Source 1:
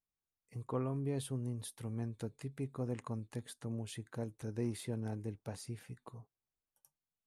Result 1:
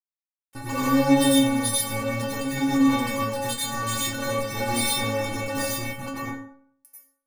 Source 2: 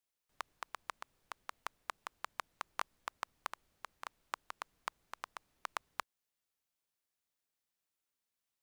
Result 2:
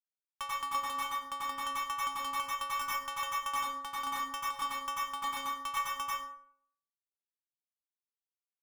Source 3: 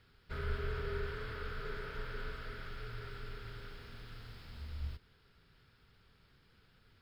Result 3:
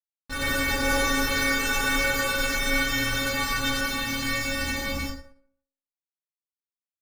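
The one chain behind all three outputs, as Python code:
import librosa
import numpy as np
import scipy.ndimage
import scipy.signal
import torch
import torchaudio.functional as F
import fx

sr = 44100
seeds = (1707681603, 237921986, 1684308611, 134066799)

y = fx.fuzz(x, sr, gain_db=53.0, gate_db=-50.0)
y = fx.stiff_resonator(y, sr, f0_hz=270.0, decay_s=0.62, stiffness=0.008)
y = fx.rev_plate(y, sr, seeds[0], rt60_s=0.55, hf_ratio=0.65, predelay_ms=80, drr_db=-5.5)
y = fx.end_taper(y, sr, db_per_s=220.0)
y = y * librosa.db_to_amplitude(7.5)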